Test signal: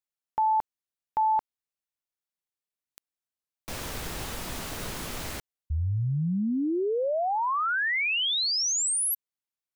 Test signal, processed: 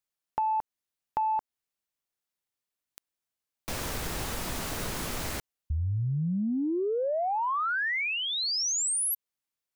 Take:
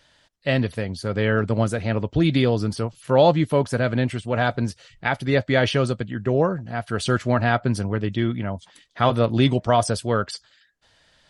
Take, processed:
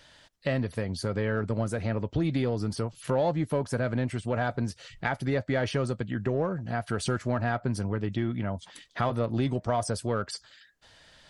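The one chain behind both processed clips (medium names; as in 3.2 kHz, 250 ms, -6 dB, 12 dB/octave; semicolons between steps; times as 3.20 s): dynamic bell 3.2 kHz, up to -7 dB, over -43 dBFS, Q 1.5; in parallel at -7.5 dB: saturation -20 dBFS; on the sum: compression 2.5:1, threshold -29 dBFS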